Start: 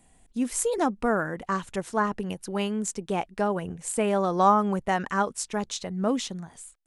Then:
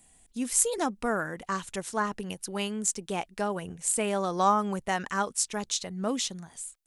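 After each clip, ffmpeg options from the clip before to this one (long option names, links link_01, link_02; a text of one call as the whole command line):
ffmpeg -i in.wav -af "highshelf=frequency=2600:gain=11,volume=-5dB" out.wav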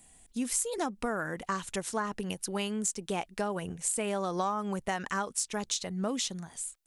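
ffmpeg -i in.wav -filter_complex "[0:a]asplit=2[link_01][link_02];[link_02]volume=16dB,asoftclip=hard,volume=-16dB,volume=-9dB[link_03];[link_01][link_03]amix=inputs=2:normalize=0,acompressor=threshold=-27dB:ratio=6,volume=-1dB" out.wav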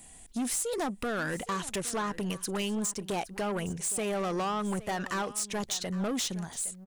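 ffmpeg -i in.wav -filter_complex "[0:a]asplit=2[link_01][link_02];[link_02]alimiter=limit=-21.5dB:level=0:latency=1:release=334,volume=1dB[link_03];[link_01][link_03]amix=inputs=2:normalize=0,asoftclip=type=tanh:threshold=-27.5dB,aecho=1:1:815:0.141" out.wav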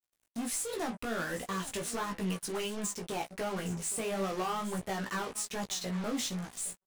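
ffmpeg -i in.wav -af "flanger=delay=9.9:depth=7.7:regen=-56:speed=0.4:shape=sinusoidal,acrusher=bits=6:mix=0:aa=0.5,flanger=delay=15.5:depth=2.5:speed=1.4,volume=4dB" out.wav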